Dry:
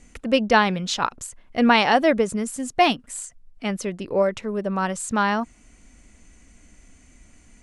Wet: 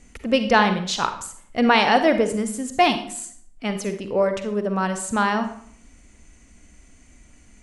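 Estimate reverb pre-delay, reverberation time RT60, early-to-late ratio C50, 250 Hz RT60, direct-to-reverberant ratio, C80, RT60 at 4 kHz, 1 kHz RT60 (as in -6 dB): 40 ms, 0.60 s, 9.5 dB, 0.70 s, 8.0 dB, 13.0 dB, 0.45 s, 0.55 s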